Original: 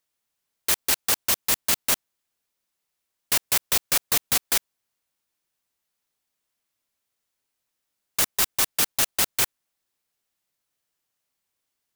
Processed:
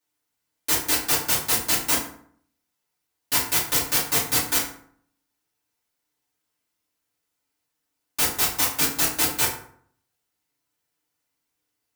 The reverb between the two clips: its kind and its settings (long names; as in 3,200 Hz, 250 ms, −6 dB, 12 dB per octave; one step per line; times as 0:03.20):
feedback delay network reverb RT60 0.59 s, low-frequency decay 1.2×, high-frequency decay 0.6×, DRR −8.5 dB
level −6.5 dB